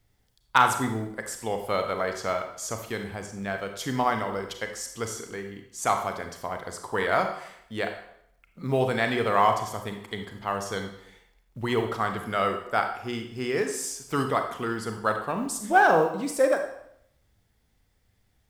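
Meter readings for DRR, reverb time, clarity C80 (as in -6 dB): 5.0 dB, 0.70 s, 10.0 dB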